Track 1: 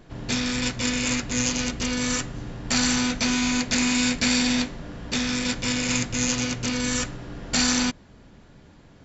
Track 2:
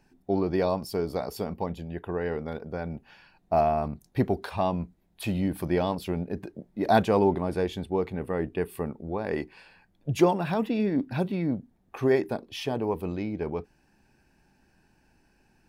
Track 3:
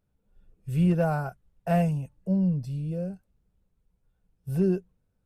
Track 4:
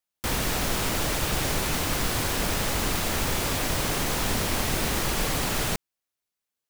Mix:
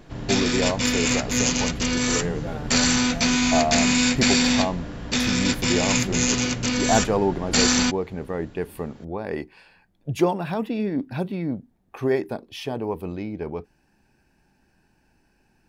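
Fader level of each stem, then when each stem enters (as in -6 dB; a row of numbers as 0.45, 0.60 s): +2.5 dB, +0.5 dB, -10.5 dB, off; 0.00 s, 0.00 s, 1.45 s, off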